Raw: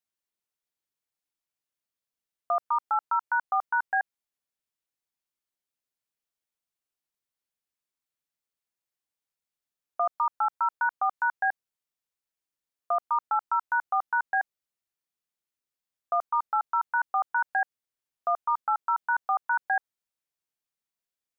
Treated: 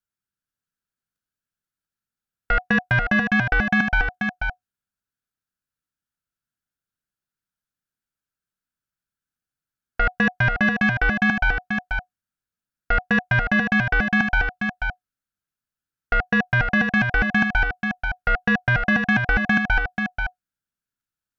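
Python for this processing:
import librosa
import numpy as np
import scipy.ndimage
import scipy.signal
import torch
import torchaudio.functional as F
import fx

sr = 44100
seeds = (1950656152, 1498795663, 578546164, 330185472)

y = fx.band_shelf(x, sr, hz=720.0, db=13.0, octaves=1.1)
y = fx.level_steps(y, sr, step_db=11)
y = fx.cheby_harmonics(y, sr, harmonics=(2, 5, 6), levels_db=(-11, -24, -35), full_scale_db=-14.5)
y = y * np.sin(2.0 * np.pi * 730.0 * np.arange(len(y)) / sr)
y = y + 10.0 ** (-5.5 / 20.0) * np.pad(y, (int(486 * sr / 1000.0), 0))[:len(y)]
y = F.gain(torch.from_numpy(y), 7.0).numpy()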